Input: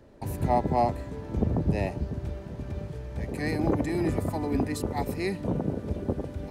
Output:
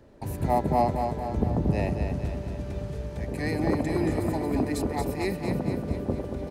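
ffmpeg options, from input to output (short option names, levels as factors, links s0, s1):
-filter_complex "[0:a]asettb=1/sr,asplit=3[s0][s1][s2];[s0]atrim=end=2.074[s3];[s1]atrim=start=2.07:end=3.18,asetpts=PTS-STARTPTS,afade=t=in:d=0.004:c=qsin,afade=t=out:st=1.106:d=0.004:c=qsin,equalizer=f=7900:t=o:w=2.4:g=4.5[s4];[s2]atrim=start=3.176[s5];[s3][s4]acrossfade=d=0.004:c1=hsin:c2=qsin[s6];[s6][s5]acrossfade=d=0.004:c1=qsin:c2=hsin,aecho=1:1:229|458|687|916|1145|1374|1603:0.501|0.276|0.152|0.0834|0.0459|0.0252|0.0139"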